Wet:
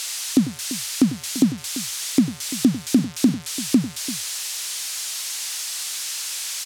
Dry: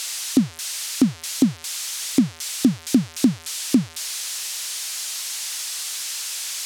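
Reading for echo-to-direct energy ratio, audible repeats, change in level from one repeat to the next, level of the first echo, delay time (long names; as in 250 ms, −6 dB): −12.0 dB, 2, repeats not evenly spaced, −15.0 dB, 97 ms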